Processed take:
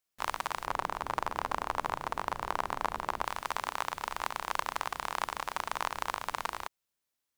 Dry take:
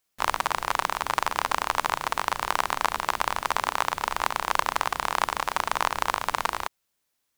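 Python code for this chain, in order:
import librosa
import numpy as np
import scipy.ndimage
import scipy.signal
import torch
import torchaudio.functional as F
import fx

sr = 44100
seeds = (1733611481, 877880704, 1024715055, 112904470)

y = fx.tilt_shelf(x, sr, db=6.0, hz=1300.0, at=(0.66, 3.25))
y = F.gain(torch.from_numpy(y), -8.5).numpy()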